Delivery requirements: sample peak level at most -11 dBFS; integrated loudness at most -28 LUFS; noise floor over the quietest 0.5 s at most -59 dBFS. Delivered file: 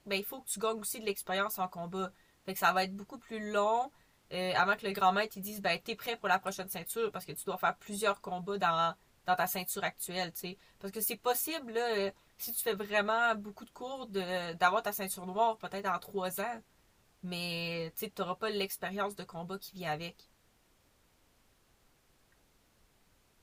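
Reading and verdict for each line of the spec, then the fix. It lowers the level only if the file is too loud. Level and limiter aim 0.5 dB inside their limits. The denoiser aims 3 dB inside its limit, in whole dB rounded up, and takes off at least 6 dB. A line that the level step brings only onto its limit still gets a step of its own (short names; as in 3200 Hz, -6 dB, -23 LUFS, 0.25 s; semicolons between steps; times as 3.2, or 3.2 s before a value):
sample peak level -12.5 dBFS: OK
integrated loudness -34.0 LUFS: OK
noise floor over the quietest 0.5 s -69 dBFS: OK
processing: none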